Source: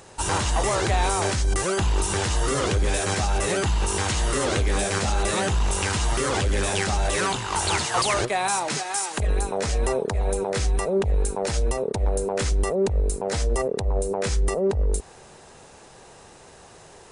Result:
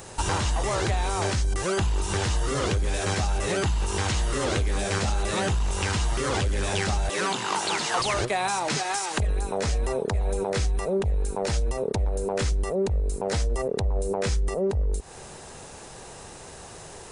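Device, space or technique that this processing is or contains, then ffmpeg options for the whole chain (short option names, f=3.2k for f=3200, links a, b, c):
ASMR close-microphone chain: -filter_complex "[0:a]lowshelf=f=150:g=4.5,acompressor=threshold=-26dB:ratio=6,highshelf=f=7.7k:g=7.5,asettb=1/sr,asplit=3[a][b][c];[a]atrim=end=7.094[d];[b]atrim=start=7.09:end=8,asetpts=PTS-STARTPTS,afade=t=in:d=0.004:c=qsin,afade=t=out:st=0.906:d=0.004:c=qsin,highpass=f=170:w=0.5412,highpass=f=170:w=1.3066[e];[c]atrim=start=7.996[f];[d][e]acrossfade=d=0.004:c1=hsin:c2=qsin[g];[g][f]acrossfade=d=0.004:c1=qsin:c2=hsin,acrossover=split=6400[h][i];[i]acompressor=threshold=-46dB:ratio=4:attack=1:release=60[j];[h][j]amix=inputs=2:normalize=0,volume=3.5dB"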